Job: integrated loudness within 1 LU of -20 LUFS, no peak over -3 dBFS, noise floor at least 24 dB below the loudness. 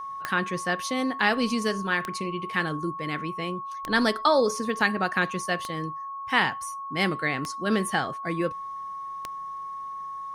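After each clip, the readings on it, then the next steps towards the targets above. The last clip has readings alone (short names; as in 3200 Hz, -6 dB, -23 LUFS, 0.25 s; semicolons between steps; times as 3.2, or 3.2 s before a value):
clicks 6; steady tone 1100 Hz; tone level -33 dBFS; loudness -27.5 LUFS; peak -7.5 dBFS; loudness target -20.0 LUFS
-> de-click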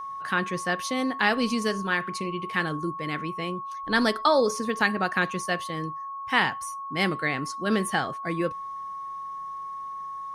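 clicks 0; steady tone 1100 Hz; tone level -33 dBFS
-> notch 1100 Hz, Q 30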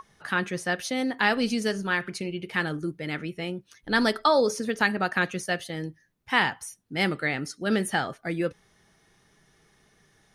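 steady tone none; loudness -27.0 LUFS; peak -7.5 dBFS; loudness target -20.0 LUFS
-> gain +7 dB; limiter -3 dBFS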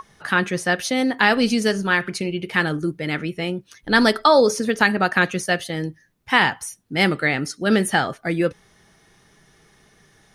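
loudness -20.0 LUFS; peak -3.0 dBFS; noise floor -57 dBFS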